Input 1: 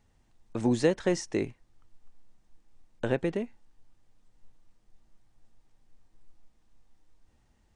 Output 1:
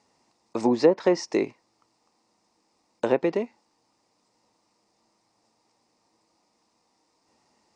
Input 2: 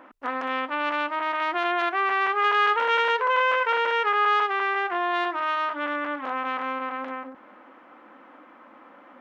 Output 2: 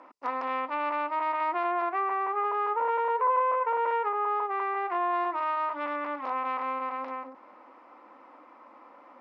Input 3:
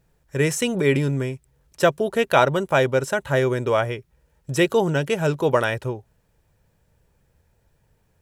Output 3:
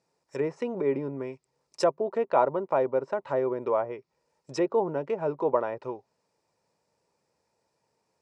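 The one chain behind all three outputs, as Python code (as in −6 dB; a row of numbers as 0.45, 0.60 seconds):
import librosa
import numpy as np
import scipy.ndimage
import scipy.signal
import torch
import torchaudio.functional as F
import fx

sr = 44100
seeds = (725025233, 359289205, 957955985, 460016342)

y = fx.env_lowpass_down(x, sr, base_hz=1100.0, full_db=-18.5)
y = fx.cabinet(y, sr, low_hz=300.0, low_slope=12, high_hz=8900.0, hz=(980.0, 1600.0, 3200.0, 5000.0), db=(5, -9, -8, 8))
y = y * 10.0 ** (-30 / 20.0) / np.sqrt(np.mean(np.square(y)))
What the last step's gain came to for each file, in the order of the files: +7.5, −2.5, −4.5 decibels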